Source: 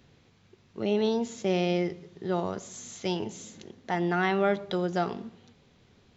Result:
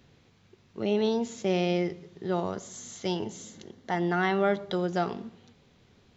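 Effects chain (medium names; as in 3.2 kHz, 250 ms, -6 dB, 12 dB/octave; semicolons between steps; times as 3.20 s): 2.54–4.78 s: band-stop 2.5 kHz, Q 8.4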